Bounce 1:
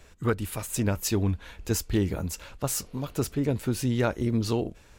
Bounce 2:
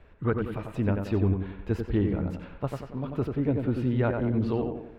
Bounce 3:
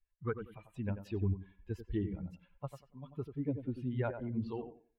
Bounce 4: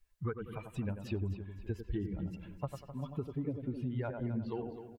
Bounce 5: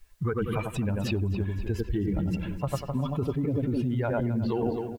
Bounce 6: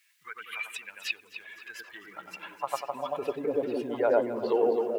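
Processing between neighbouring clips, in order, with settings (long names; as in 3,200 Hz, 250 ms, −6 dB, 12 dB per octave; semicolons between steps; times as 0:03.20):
high-frequency loss of the air 480 metres; tape delay 92 ms, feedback 52%, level −3 dB, low-pass 2,000 Hz
spectral dynamics exaggerated over time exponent 2; level −6 dB
downward compressor, threshold −44 dBFS, peak gain reduction 15 dB; on a send: repeating echo 258 ms, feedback 37%, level −12 dB; on the sum: level +10 dB
in parallel at +2 dB: compressor whose output falls as the input rises −41 dBFS, ratio −0.5; on the sum: floating-point word with a short mantissa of 6 bits; level +6 dB
high-pass filter sweep 2,100 Hz → 480 Hz, 0:01.44–0:03.52; echo through a band-pass that steps 436 ms, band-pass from 300 Hz, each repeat 0.7 octaves, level −5 dB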